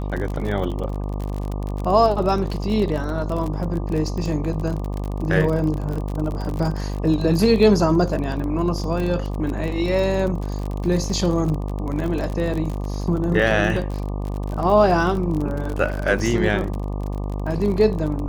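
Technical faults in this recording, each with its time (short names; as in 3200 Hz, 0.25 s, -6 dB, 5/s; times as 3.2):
buzz 50 Hz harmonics 24 -26 dBFS
crackle 38/s -26 dBFS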